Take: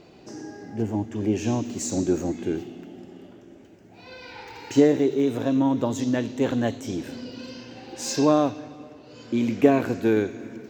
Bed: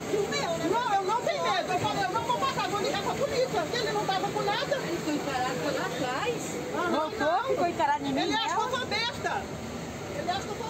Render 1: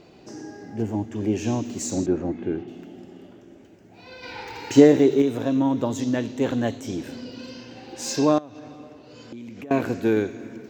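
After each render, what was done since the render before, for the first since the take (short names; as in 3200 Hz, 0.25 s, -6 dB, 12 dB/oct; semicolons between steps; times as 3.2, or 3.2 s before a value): 2.06–2.68 LPF 2200 Hz; 4.23–5.22 gain +4.5 dB; 8.38–9.71 compressor 12:1, threshold -35 dBFS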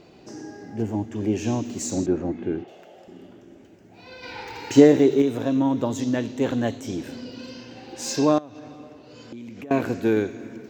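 2.64–3.08 resonant low shelf 390 Hz -12 dB, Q 3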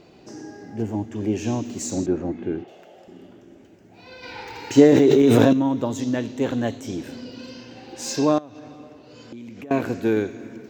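4.92–5.53 fast leveller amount 100%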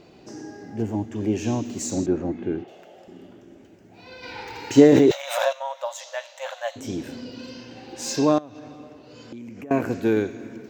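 5.11–6.76 brick-wall FIR high-pass 520 Hz; 9.38–9.91 bell 3700 Hz -12 dB 0.52 oct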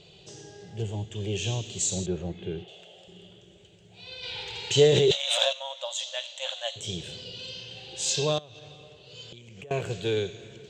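EQ curve 180 Hz 0 dB, 260 Hz -27 dB, 400 Hz -3 dB, 960 Hz -10 dB, 1500 Hz -9 dB, 2200 Hz -4 dB, 3300 Hz +14 dB, 5300 Hz -2 dB, 8000 Hz +7 dB, 12000 Hz -16 dB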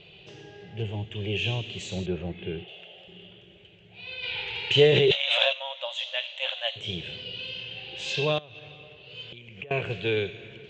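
synth low-pass 2600 Hz, resonance Q 2.7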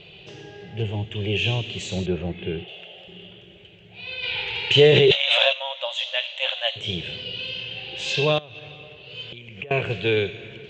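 gain +5 dB; limiter -3 dBFS, peak gain reduction 2 dB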